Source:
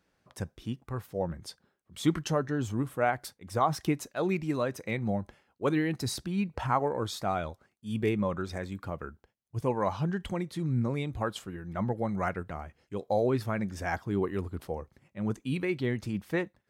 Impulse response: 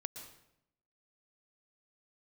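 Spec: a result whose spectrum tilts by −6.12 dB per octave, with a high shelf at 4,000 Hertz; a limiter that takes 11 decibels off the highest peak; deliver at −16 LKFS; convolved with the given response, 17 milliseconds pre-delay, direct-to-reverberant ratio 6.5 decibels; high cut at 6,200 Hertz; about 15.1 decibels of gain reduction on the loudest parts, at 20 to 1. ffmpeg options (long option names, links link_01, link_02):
-filter_complex "[0:a]lowpass=6200,highshelf=frequency=4000:gain=-6.5,acompressor=threshold=-34dB:ratio=20,alimiter=level_in=8.5dB:limit=-24dB:level=0:latency=1,volume=-8.5dB,asplit=2[link_01][link_02];[1:a]atrim=start_sample=2205,adelay=17[link_03];[link_02][link_03]afir=irnorm=-1:irlink=0,volume=-4.5dB[link_04];[link_01][link_04]amix=inputs=2:normalize=0,volume=26dB"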